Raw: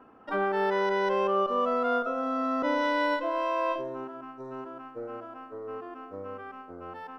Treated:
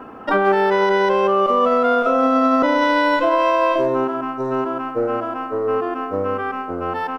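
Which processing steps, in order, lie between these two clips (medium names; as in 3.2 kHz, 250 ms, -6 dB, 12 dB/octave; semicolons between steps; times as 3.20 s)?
compression 2.5:1, threshold -30 dBFS, peak gain reduction 6 dB; speakerphone echo 130 ms, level -15 dB; loudness maximiser +24.5 dB; trim -7 dB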